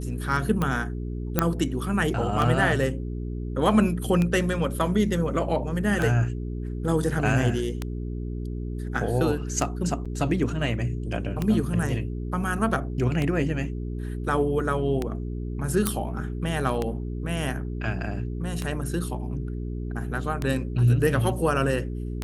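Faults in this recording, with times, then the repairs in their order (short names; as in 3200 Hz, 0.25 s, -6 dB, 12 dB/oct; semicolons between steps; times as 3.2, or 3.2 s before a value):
hum 60 Hz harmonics 7 -31 dBFS
tick -13 dBFS
1.39 pop -5 dBFS
10.05–10.06 gap 5.9 ms
15.87 pop -6 dBFS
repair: de-click; de-hum 60 Hz, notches 7; interpolate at 10.05, 5.9 ms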